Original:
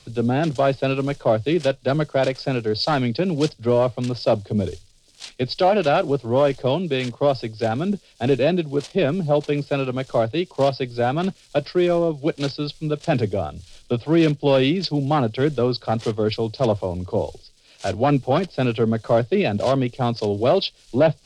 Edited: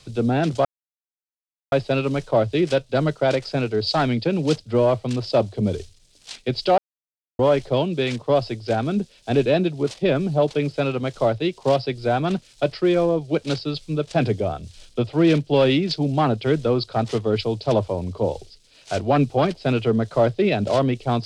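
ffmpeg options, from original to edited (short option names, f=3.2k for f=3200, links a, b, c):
-filter_complex "[0:a]asplit=4[a][b][c][d];[a]atrim=end=0.65,asetpts=PTS-STARTPTS,afade=t=out:st=0.646:d=0.004:c=hsin,apad=pad_dur=1.07[e];[b]atrim=start=0.65:end=5.71,asetpts=PTS-STARTPTS,afade=t=in:d=0.004:c=hsin,afade=t=out:st=5.056:d=0.004:c=hsin[f];[c]atrim=start=5.71:end=6.32,asetpts=PTS-STARTPTS,volume=0[g];[d]atrim=start=6.32,asetpts=PTS-STARTPTS,afade=t=in:d=0.004:c=hsin[h];[e][f][g][h]concat=n=4:v=0:a=1"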